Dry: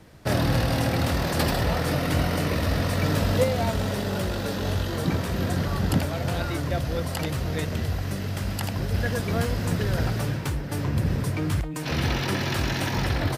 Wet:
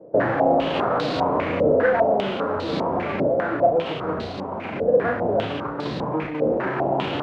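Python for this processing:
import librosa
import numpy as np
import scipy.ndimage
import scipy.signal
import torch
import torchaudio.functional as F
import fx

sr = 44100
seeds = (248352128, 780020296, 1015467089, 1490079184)

p1 = scipy.ndimage.median_filter(x, 25, mode='constant')
p2 = fx.vibrato(p1, sr, rate_hz=0.56, depth_cents=37.0)
p3 = scipy.signal.sosfilt(scipy.signal.butter(2, 310.0, 'highpass', fs=sr, output='sos'), p2)
p4 = fx.echo_feedback(p3, sr, ms=66, feedback_pct=43, wet_db=-5)
p5 = fx.fold_sine(p4, sr, drive_db=9, ceiling_db=-12.5)
p6 = p4 + F.gain(torch.from_numpy(p5), -9.5).numpy()
p7 = fx.stretch_vocoder(p6, sr, factor=0.54)
y = fx.filter_held_lowpass(p7, sr, hz=5.0, low_hz=530.0, high_hz=4100.0)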